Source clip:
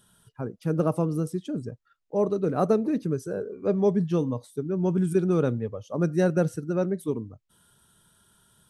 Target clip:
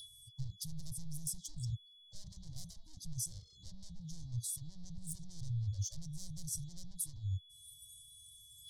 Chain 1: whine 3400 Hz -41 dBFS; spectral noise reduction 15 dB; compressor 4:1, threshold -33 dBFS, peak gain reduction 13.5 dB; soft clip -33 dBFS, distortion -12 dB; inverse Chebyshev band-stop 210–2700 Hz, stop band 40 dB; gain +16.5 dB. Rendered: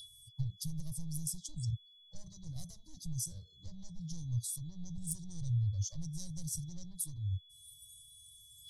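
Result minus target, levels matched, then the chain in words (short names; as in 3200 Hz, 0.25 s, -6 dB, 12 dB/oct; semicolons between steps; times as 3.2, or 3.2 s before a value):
soft clip: distortion -7 dB
whine 3400 Hz -41 dBFS; spectral noise reduction 15 dB; compressor 4:1, threshold -33 dBFS, peak gain reduction 13.5 dB; soft clip -42.5 dBFS, distortion -5 dB; inverse Chebyshev band-stop 210–2700 Hz, stop band 40 dB; gain +16.5 dB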